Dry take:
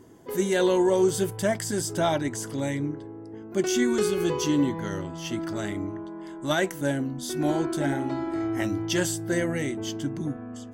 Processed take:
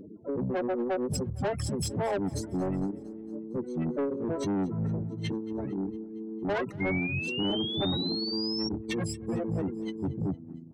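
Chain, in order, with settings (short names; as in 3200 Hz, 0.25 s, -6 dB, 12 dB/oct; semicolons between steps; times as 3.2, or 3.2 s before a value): spectral contrast raised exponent 3.2; notches 50/100/150/200/250 Hz; reverb removal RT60 0.87 s; dynamic EQ 350 Hz, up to -7 dB, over -39 dBFS, Q 2; comb 6.7 ms, depth 46%; in parallel at +0.5 dB: limiter -25.5 dBFS, peak gain reduction 9.5 dB; on the sum: downsampling 22050 Hz; harmoniser -7 st -1 dB, +5 st -6 dB; soft clip -21 dBFS, distortion -10 dB; feedback echo 0.229 s, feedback 60%, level -22 dB; painted sound rise, 6.8–8.69, 2100–5600 Hz -31 dBFS; gain -4 dB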